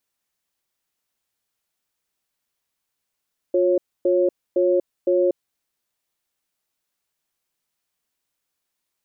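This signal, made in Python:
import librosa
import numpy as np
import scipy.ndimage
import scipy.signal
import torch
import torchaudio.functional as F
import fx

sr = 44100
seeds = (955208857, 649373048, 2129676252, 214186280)

y = fx.cadence(sr, length_s=1.9, low_hz=356.0, high_hz=548.0, on_s=0.24, off_s=0.27, level_db=-18.0)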